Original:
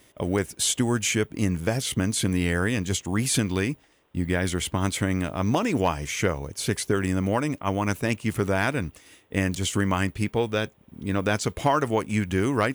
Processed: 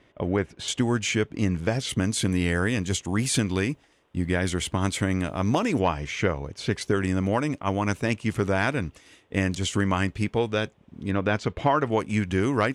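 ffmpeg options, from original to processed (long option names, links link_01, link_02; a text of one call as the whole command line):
ffmpeg -i in.wav -af "asetnsamples=nb_out_samples=441:pad=0,asendcmd='0.68 lowpass f 5600;1.89 lowpass f 9400;5.79 lowpass f 4200;6.81 lowpass f 7500;11.11 lowpass f 3300;11.92 lowpass f 7500',lowpass=2700" out.wav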